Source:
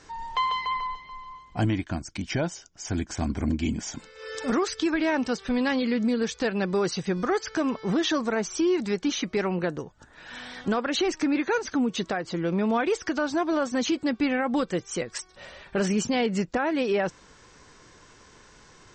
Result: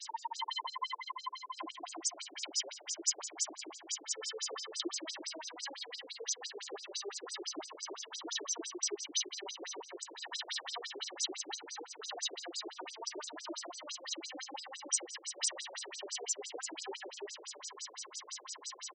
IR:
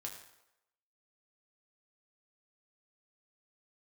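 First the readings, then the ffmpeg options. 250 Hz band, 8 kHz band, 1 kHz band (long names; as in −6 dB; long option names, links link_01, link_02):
−26.0 dB, +2.0 dB, −13.5 dB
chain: -filter_complex "[0:a]highpass=frequency=230:width=0.5412,highpass=frequency=230:width=1.3066,adynamicequalizer=threshold=0.01:dfrequency=600:dqfactor=1.3:tfrequency=600:tqfactor=1.3:attack=5:release=100:ratio=0.375:range=2:mode=cutabove:tftype=bell,acompressor=threshold=-40dB:ratio=8,aecho=1:1:1:0.46,aecho=1:1:278|556|834|1112|1390:0.708|0.276|0.108|0.042|0.0164,asplit=2[link_01][link_02];[1:a]atrim=start_sample=2205,afade=type=out:start_time=0.15:duration=0.01,atrim=end_sample=7056,asetrate=26019,aresample=44100[link_03];[link_02][link_03]afir=irnorm=-1:irlink=0,volume=0.5dB[link_04];[link_01][link_04]amix=inputs=2:normalize=0,aexciter=amount=2.6:drive=6.5:freq=2900,afftfilt=real='re*between(b*sr/1024,420*pow(6500/420,0.5+0.5*sin(2*PI*5.9*pts/sr))/1.41,420*pow(6500/420,0.5+0.5*sin(2*PI*5.9*pts/sr))*1.41)':imag='im*between(b*sr/1024,420*pow(6500/420,0.5+0.5*sin(2*PI*5.9*pts/sr))/1.41,420*pow(6500/420,0.5+0.5*sin(2*PI*5.9*pts/sr))*1.41)':win_size=1024:overlap=0.75"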